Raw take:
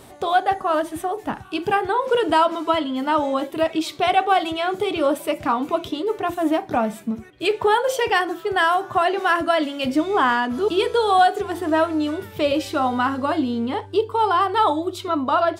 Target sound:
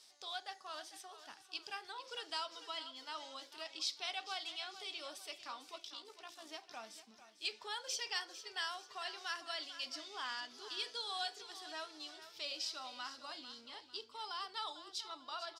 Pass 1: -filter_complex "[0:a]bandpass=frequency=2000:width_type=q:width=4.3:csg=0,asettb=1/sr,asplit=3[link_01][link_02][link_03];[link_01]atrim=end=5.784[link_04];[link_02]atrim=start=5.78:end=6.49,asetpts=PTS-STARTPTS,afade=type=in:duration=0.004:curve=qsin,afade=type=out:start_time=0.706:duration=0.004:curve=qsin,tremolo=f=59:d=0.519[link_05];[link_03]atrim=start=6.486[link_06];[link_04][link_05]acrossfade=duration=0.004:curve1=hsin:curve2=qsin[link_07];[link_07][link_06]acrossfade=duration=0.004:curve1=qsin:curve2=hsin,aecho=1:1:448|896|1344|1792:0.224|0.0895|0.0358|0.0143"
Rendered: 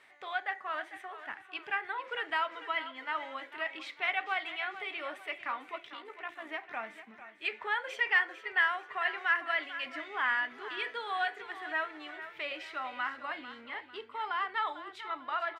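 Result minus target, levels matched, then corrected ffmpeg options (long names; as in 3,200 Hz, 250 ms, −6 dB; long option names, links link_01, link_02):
4,000 Hz band −10.5 dB
-filter_complex "[0:a]bandpass=frequency=5100:width_type=q:width=4.3:csg=0,asettb=1/sr,asplit=3[link_01][link_02][link_03];[link_01]atrim=end=5.784[link_04];[link_02]atrim=start=5.78:end=6.49,asetpts=PTS-STARTPTS,afade=type=in:duration=0.004:curve=qsin,afade=type=out:start_time=0.706:duration=0.004:curve=qsin,tremolo=f=59:d=0.519[link_05];[link_03]atrim=start=6.486[link_06];[link_04][link_05]acrossfade=duration=0.004:curve1=hsin:curve2=qsin[link_07];[link_07][link_06]acrossfade=duration=0.004:curve1=qsin:curve2=hsin,aecho=1:1:448|896|1344|1792:0.224|0.0895|0.0358|0.0143"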